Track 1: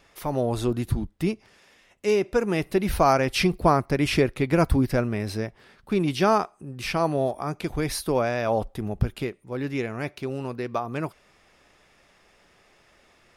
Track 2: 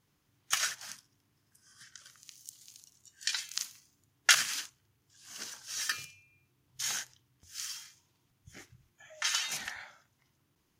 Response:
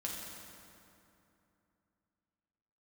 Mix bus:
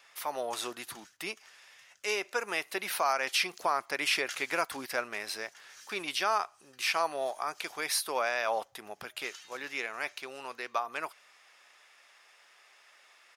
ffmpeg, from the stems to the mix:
-filter_complex "[0:a]highpass=1k,volume=1.5dB[a];[1:a]volume=-17.5dB,asplit=2[b][c];[c]volume=-9.5dB,aecho=0:1:420|840|1260|1680|2100|2520|2940|3360|3780:1|0.59|0.348|0.205|0.121|0.0715|0.0422|0.0249|0.0147[d];[a][b][d]amix=inputs=3:normalize=0,alimiter=limit=-17dB:level=0:latency=1:release=175"

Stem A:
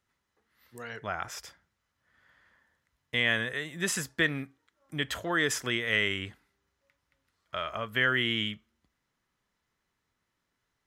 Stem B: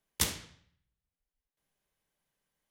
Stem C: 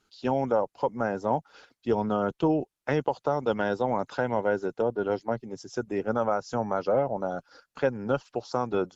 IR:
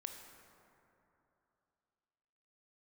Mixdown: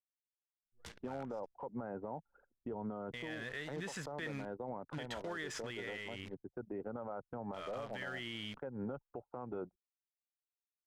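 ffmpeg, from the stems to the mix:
-filter_complex "[0:a]dynaudnorm=f=690:g=7:m=16dB,alimiter=limit=-13.5dB:level=0:latency=1:release=37,acrusher=bits=6:dc=4:mix=0:aa=0.000001,volume=-13dB,asplit=2[a][b];[1:a]adelay=650,volume=-16dB[c];[2:a]lowpass=1.4k,acompressor=threshold=-26dB:ratio=10,adelay=800,volume=-1dB[d];[b]apad=whole_len=430209[e];[d][e]sidechaincompress=threshold=-42dB:ratio=4:attack=33:release=647[f];[a][c][f]amix=inputs=3:normalize=0,anlmdn=0.01,adynamicsmooth=sensitivity=2.5:basefreq=5.5k,alimiter=level_in=9dB:limit=-24dB:level=0:latency=1:release=155,volume=-9dB"

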